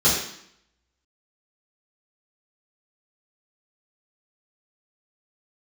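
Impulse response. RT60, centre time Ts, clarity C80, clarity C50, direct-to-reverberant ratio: 0.70 s, 49 ms, 5.5 dB, 2.5 dB, -10.5 dB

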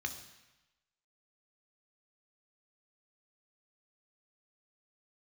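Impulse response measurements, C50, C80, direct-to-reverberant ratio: 10.0 dB, 12.0 dB, 5.5 dB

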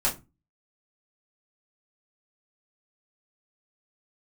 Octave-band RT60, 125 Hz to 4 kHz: 0.40 s, 0.40 s, 0.25 s, 0.25 s, 0.20 s, 0.15 s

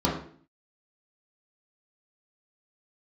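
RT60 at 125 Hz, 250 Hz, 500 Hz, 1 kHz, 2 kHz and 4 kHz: 0.60 s, 0.65 s, 0.55 s, 0.45 s, 0.45 s, 0.45 s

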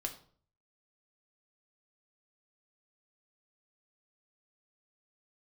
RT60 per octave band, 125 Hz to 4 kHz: 0.75 s, 0.60 s, 0.55 s, 0.45 s, 0.35 s, 0.35 s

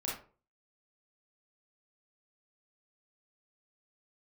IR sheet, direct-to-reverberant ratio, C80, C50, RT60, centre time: -5.0 dB, 10.0 dB, 2.5 dB, 0.40 s, 43 ms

